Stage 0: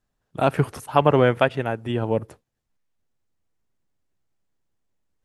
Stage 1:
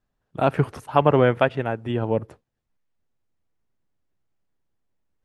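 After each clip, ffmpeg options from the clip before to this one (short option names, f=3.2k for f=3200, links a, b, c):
-af "lowpass=f=3.3k:p=1"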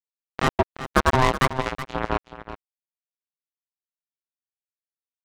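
-af "acrusher=bits=2:mix=0:aa=0.5,aecho=1:1:373:0.237,aeval=exprs='val(0)*sin(2*PI*520*n/s)':c=same,volume=1.5dB"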